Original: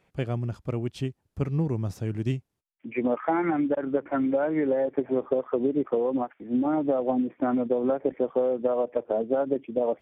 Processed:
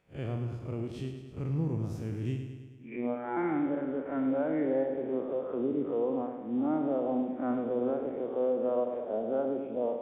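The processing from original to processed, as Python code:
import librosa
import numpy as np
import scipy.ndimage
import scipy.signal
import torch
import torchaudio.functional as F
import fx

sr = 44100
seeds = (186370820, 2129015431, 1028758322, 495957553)

p1 = fx.spec_blur(x, sr, span_ms=98.0)
p2 = fx.robotise(p1, sr, hz=121.0, at=(2.96, 3.37))
p3 = p2 + fx.echo_feedback(p2, sr, ms=106, feedback_pct=60, wet_db=-8.0, dry=0)
y = F.gain(torch.from_numpy(p3), -4.0).numpy()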